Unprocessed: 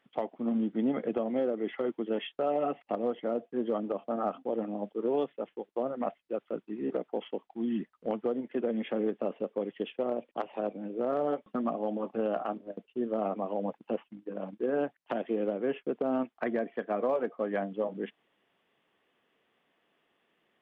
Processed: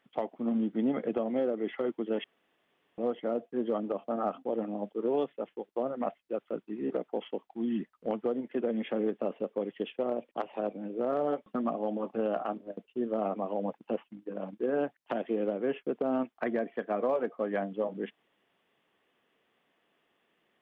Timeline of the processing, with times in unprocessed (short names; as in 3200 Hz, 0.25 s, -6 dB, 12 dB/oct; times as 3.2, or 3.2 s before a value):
2.24–2.98 room tone